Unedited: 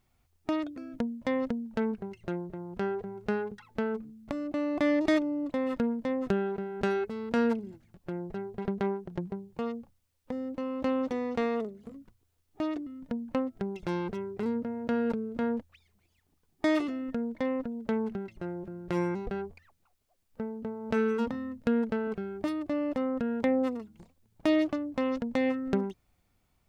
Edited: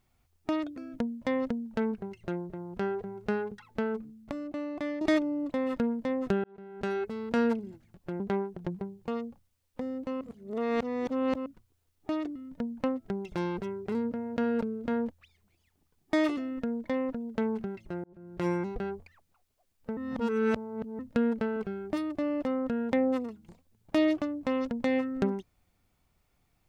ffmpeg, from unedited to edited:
ffmpeg -i in.wav -filter_complex "[0:a]asplit=9[link_01][link_02][link_03][link_04][link_05][link_06][link_07][link_08][link_09];[link_01]atrim=end=5.01,asetpts=PTS-STARTPTS,afade=type=out:start_time=4:duration=1.01:silence=0.298538[link_10];[link_02]atrim=start=5.01:end=6.44,asetpts=PTS-STARTPTS,afade=type=in:duration=0.004:curve=hsin:silence=0.298538,afade=type=out:start_time=1.426:duration=0.004:curve=hsin[link_11];[link_03]atrim=start=6.44:end=8.202,asetpts=PTS-STARTPTS,afade=type=in:duration=0.67[link_12];[link_04]atrim=start=8.708:end=10.722[link_13];[link_05]atrim=start=10.718:end=11.972,asetpts=PTS-STARTPTS,areverse[link_14];[link_06]atrim=start=11.968:end=18.55,asetpts=PTS-STARTPTS,afade=type=out:start_time=6.578:duration=0.004:curve=hsin[link_15];[link_07]atrim=start=18.55:end=20.482,asetpts=PTS-STARTPTS,afade=type=in:duration=0.42[link_16];[link_08]atrim=start=20.478:end=21.502,asetpts=PTS-STARTPTS,areverse[link_17];[link_09]atrim=start=21.498[link_18];[link_10][link_11][link_12]concat=n=3:v=0:a=1[link_19];[link_19][link_13]acrossfade=duration=0.004:curve1=hsin:curve2=hsin[link_20];[link_20][link_14]acrossfade=duration=0.004:curve1=hsin:curve2=hsin[link_21];[link_15][link_16]concat=n=2:v=0:a=1[link_22];[link_21][link_22]acrossfade=duration=0.004:curve1=hsin:curve2=hsin[link_23];[link_23][link_17]acrossfade=duration=0.004:curve1=hsin:curve2=hsin[link_24];[link_24][link_18]acrossfade=duration=0.004:curve1=hsin:curve2=hsin" out.wav

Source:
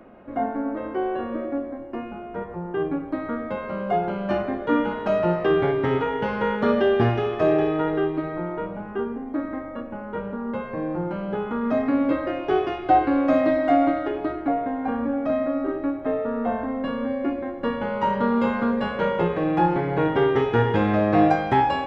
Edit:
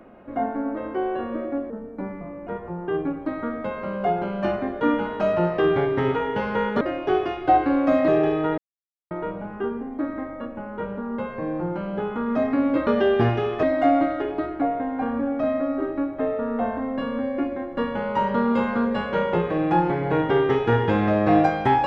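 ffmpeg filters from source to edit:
ffmpeg -i in.wav -filter_complex "[0:a]asplit=9[link_01][link_02][link_03][link_04][link_05][link_06][link_07][link_08][link_09];[link_01]atrim=end=1.704[link_10];[link_02]atrim=start=1.7:end=2.33,asetpts=PTS-STARTPTS,asetrate=36162,aresample=44100[link_11];[link_03]atrim=start=2.326:end=6.672[link_12];[link_04]atrim=start=12.218:end=13.492[link_13];[link_05]atrim=start=7.428:end=7.93,asetpts=PTS-STARTPTS,afade=type=out:start_time=0.498:duration=0.004:curve=hsin[link_14];[link_06]atrim=start=7.93:end=8.46,asetpts=PTS-STARTPTS,volume=0[link_15];[link_07]atrim=start=8.46:end=12.222,asetpts=PTS-STARTPTS,afade=type=in:duration=0.004:curve=hsin[link_16];[link_08]atrim=start=6.668:end=7.432[link_17];[link_09]atrim=start=13.488[link_18];[link_10][link_11]acrossfade=duration=0.004:curve1=hsin:curve2=hsin[link_19];[link_19][link_12]acrossfade=duration=0.004:curve1=hsin:curve2=hsin[link_20];[link_20][link_13]acrossfade=duration=0.004:curve1=hsin:curve2=hsin[link_21];[link_14][link_15][link_16]concat=n=3:v=0:a=1[link_22];[link_21][link_22]acrossfade=duration=0.004:curve1=hsin:curve2=hsin[link_23];[link_23][link_17]acrossfade=duration=0.004:curve1=hsin:curve2=hsin[link_24];[link_24][link_18]acrossfade=duration=0.004:curve1=hsin:curve2=hsin" out.wav

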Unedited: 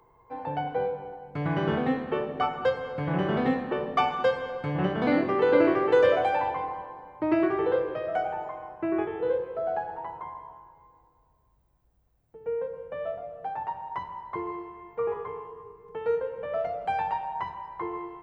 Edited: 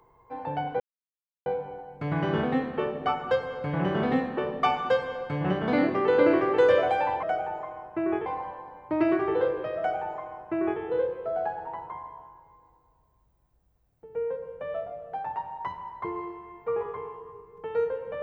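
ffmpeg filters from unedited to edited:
ffmpeg -i in.wav -filter_complex "[0:a]asplit=4[link_01][link_02][link_03][link_04];[link_01]atrim=end=0.8,asetpts=PTS-STARTPTS,afade=type=out:start_time=0.796:duration=0.004:curve=hsin,apad=pad_dur=0.66[link_05];[link_02]atrim=start=0.8:end=6.572,asetpts=PTS-STARTPTS,afade=type=in:duration=0.004:curve=hsin[link_06];[link_03]atrim=start=8.088:end=9.122[link_07];[link_04]atrim=start=6.568[link_08];[link_05][link_06]concat=n=2:v=0:a=1[link_09];[link_09][link_07]acrossfade=duration=0.004:curve1=hsin:curve2=hsin[link_10];[link_10][link_08]acrossfade=duration=0.004:curve1=hsin:curve2=hsin" out.wav

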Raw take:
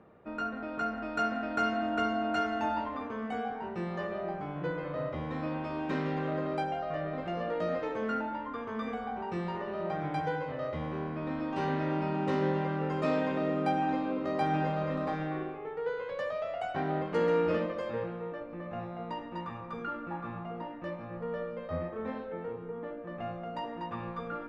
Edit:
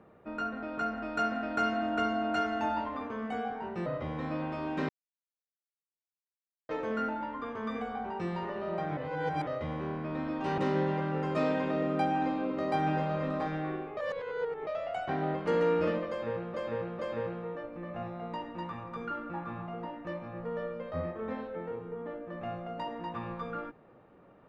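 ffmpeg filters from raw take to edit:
ffmpeg -i in.wav -filter_complex "[0:a]asplit=11[link_01][link_02][link_03][link_04][link_05][link_06][link_07][link_08][link_09][link_10][link_11];[link_01]atrim=end=3.862[link_12];[link_02]atrim=start=4.978:end=6.01,asetpts=PTS-STARTPTS,afade=type=out:start_time=1.028:duration=0.004:curve=hsin[link_13];[link_03]atrim=start=6.01:end=7.81,asetpts=PTS-STARTPTS,volume=0[link_14];[link_04]atrim=start=7.81:end=10.092,asetpts=PTS-STARTPTS,afade=type=in:duration=0.004:curve=hsin[link_15];[link_05]atrim=start=10.088:end=10.592,asetpts=PTS-STARTPTS,areverse[link_16];[link_06]atrim=start=10.588:end=11.702[link_17];[link_07]atrim=start=12.248:end=15.642[link_18];[link_08]atrim=start=15.638:end=16.342,asetpts=PTS-STARTPTS,areverse[link_19];[link_09]atrim=start=16.338:end=18.212[link_20];[link_10]atrim=start=17.758:end=18.212[link_21];[link_11]atrim=start=17.758[link_22];[link_13][link_14][link_15]concat=n=3:v=0:a=1[link_23];[link_12][link_23]acrossfade=duration=0.004:curve1=hsin:curve2=hsin[link_24];[link_24][link_16]acrossfade=duration=0.004:curve1=hsin:curve2=hsin[link_25];[link_25][link_17]acrossfade=duration=0.004:curve1=hsin:curve2=hsin[link_26];[link_26][link_18]acrossfade=duration=0.004:curve1=hsin:curve2=hsin[link_27];[link_27][link_19]acrossfade=duration=0.004:curve1=hsin:curve2=hsin[link_28];[link_28][link_20]acrossfade=duration=0.004:curve1=hsin:curve2=hsin[link_29];[link_29][link_21]acrossfade=duration=0.004:curve1=hsin:curve2=hsin[link_30];[link_30][link_22]acrossfade=duration=0.004:curve1=hsin:curve2=hsin" out.wav

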